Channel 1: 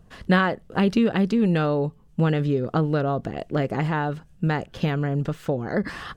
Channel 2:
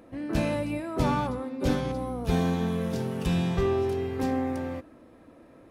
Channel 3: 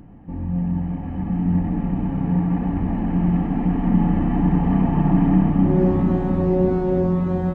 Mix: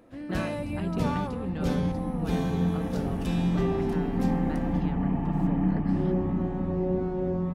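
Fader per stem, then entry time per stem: -16.5 dB, -4.0 dB, -9.0 dB; 0.00 s, 0.00 s, 0.30 s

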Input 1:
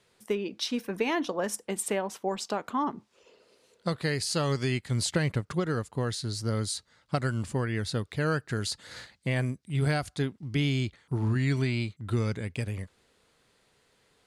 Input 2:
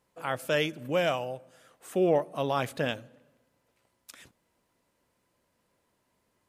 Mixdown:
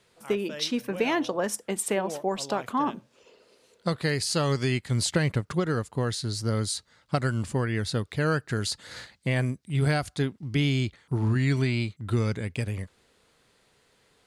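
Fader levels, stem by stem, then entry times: +2.5 dB, -12.5 dB; 0.00 s, 0.00 s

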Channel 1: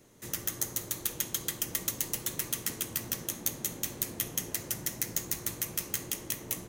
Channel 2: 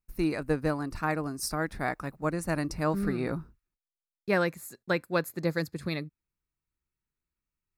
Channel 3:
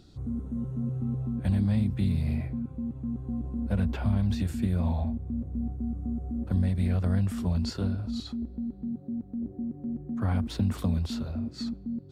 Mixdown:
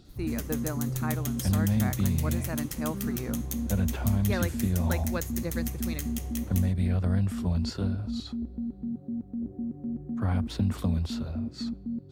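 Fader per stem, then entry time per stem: -6.0 dB, -6.5 dB, 0.0 dB; 0.05 s, 0.00 s, 0.00 s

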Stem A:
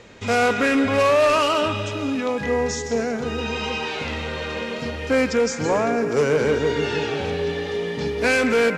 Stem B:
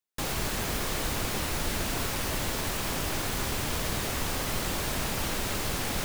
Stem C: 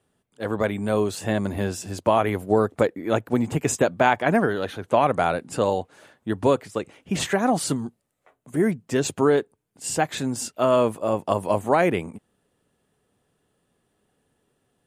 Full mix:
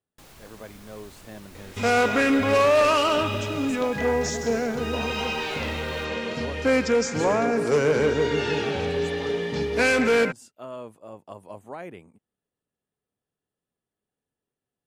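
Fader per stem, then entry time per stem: -1.5 dB, -18.5 dB, -18.5 dB; 1.55 s, 0.00 s, 0.00 s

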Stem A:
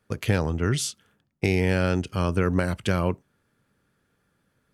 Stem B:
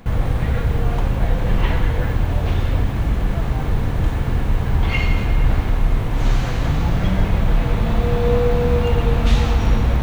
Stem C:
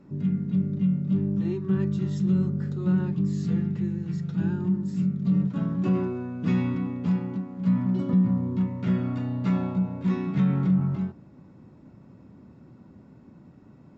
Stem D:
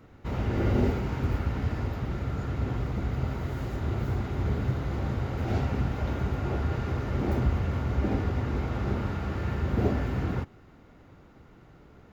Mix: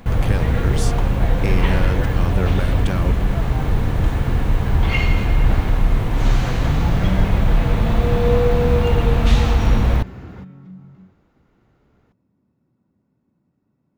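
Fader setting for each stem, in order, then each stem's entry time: -2.5 dB, +1.0 dB, -17.5 dB, -7.0 dB; 0.00 s, 0.00 s, 0.00 s, 0.00 s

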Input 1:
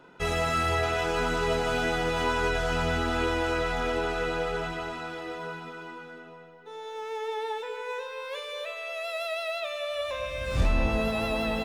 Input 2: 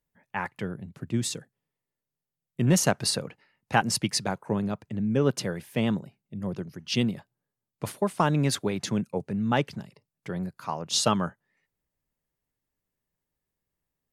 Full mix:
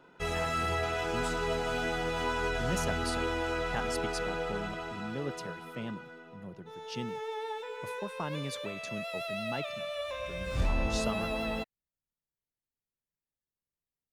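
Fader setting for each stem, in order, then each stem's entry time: -5.0 dB, -13.5 dB; 0.00 s, 0.00 s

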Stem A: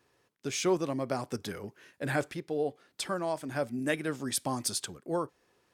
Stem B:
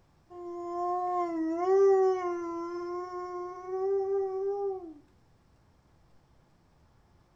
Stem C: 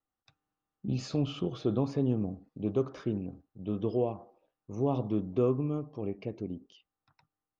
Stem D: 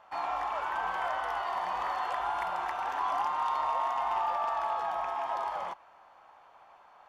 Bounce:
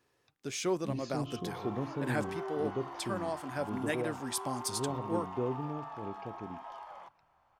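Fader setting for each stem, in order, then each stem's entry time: -4.0 dB, -18.0 dB, -7.0 dB, -13.0 dB; 0.00 s, 0.55 s, 0.00 s, 1.35 s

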